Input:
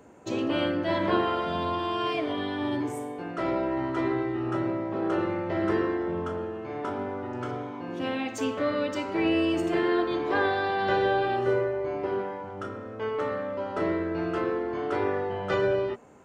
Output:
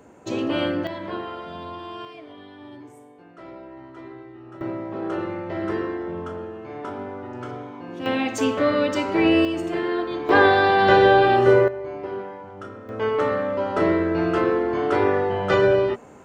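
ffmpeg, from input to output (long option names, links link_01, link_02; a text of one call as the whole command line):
ffmpeg -i in.wav -af "asetnsamples=nb_out_samples=441:pad=0,asendcmd='0.87 volume volume -6.5dB;2.05 volume volume -13dB;4.61 volume volume -0.5dB;8.06 volume volume 7dB;9.45 volume volume 0dB;10.29 volume volume 10dB;11.68 volume volume -1.5dB;12.89 volume volume 7.5dB',volume=3dB" out.wav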